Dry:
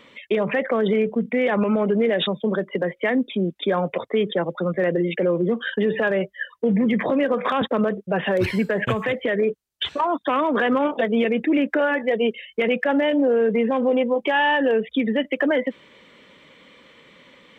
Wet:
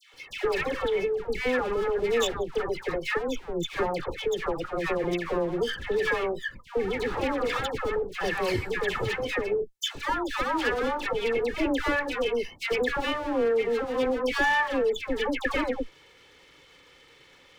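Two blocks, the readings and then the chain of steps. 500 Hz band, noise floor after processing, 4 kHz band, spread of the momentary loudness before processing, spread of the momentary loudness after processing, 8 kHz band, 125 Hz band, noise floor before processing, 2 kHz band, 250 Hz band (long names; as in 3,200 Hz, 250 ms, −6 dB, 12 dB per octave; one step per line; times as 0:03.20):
−5.5 dB, −56 dBFS, −3.0 dB, 5 LU, 6 LU, can't be measured, −9.5 dB, −54 dBFS, −3.5 dB, −11.0 dB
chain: lower of the sound and its delayed copy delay 2.3 ms
parametric band 610 Hz −4 dB 1.8 octaves
all-pass dispersion lows, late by 139 ms, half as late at 1,200 Hz
level −2 dB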